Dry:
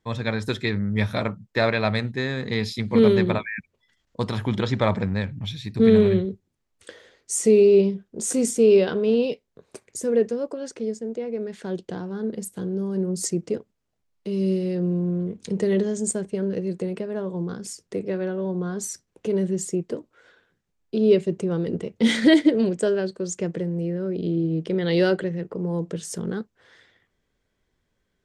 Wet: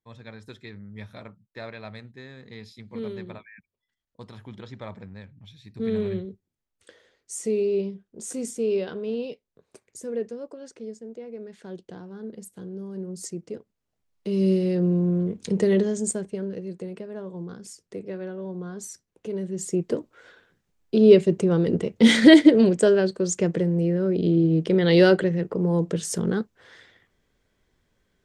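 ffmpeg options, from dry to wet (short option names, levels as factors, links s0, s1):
-af "volume=4.47,afade=t=in:st=5.51:d=0.62:silence=0.398107,afade=t=in:st=13.52:d=0.93:silence=0.281838,afade=t=out:st=15.61:d=0.96:silence=0.354813,afade=t=in:st=19.51:d=0.44:silence=0.281838"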